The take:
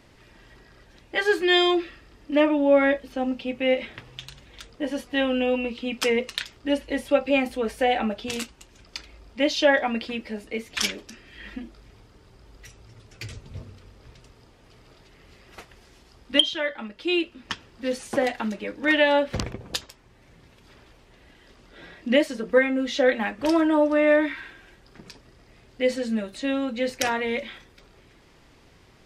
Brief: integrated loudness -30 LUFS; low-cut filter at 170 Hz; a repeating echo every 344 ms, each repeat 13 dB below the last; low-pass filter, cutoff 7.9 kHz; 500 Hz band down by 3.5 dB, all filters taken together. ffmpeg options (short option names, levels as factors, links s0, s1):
-af "highpass=170,lowpass=7900,equalizer=f=500:t=o:g=-4,aecho=1:1:344|688|1032:0.224|0.0493|0.0108,volume=0.631"